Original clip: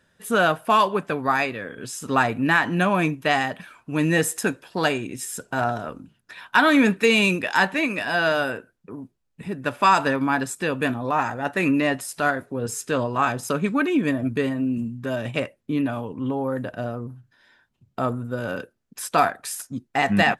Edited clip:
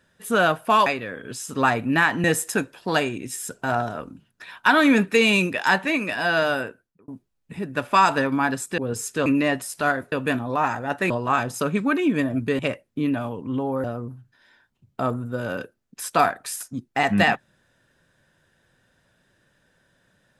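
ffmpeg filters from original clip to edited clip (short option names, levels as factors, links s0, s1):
-filter_complex "[0:a]asplit=10[s0][s1][s2][s3][s4][s5][s6][s7][s8][s9];[s0]atrim=end=0.862[s10];[s1]atrim=start=1.388:end=2.772[s11];[s2]atrim=start=4.128:end=8.97,asetpts=PTS-STARTPTS,afade=t=out:st=4.372:d=0.47[s12];[s3]atrim=start=8.97:end=10.672,asetpts=PTS-STARTPTS,afade=t=in:d=0.004:c=hsin[s13];[s4]atrim=start=12.508:end=12.992[s14];[s5]atrim=start=11.648:end=12.512[s15];[s6]atrim=start=10.668:end=11.652[s16];[s7]atrim=start=12.988:end=14.482[s17];[s8]atrim=start=15.308:end=16.562[s18];[s9]atrim=start=16.828[s19];[s10][s11]acrossfade=d=0.004:c1=hsin:c2=hsin[s20];[s12][s13]concat=n=2:v=0:a=1[s21];[s20][s21]acrossfade=d=0.004:c1=hsin:c2=hsin[s22];[s22][s14]acrossfade=d=0.004:c1=hsin:c2=hsin[s23];[s23][s15]acrossfade=d=0.004:c1=hsin:c2=hsin[s24];[s24][s16]acrossfade=d=0.004:c1=hsin:c2=hsin[s25];[s25][s17]acrossfade=d=0.004:c1=hsin:c2=hsin[s26];[s26][s18]acrossfade=d=0.004:c1=hsin:c2=hsin[s27];[s27][s19]acrossfade=d=0.004:c1=hsin:c2=hsin"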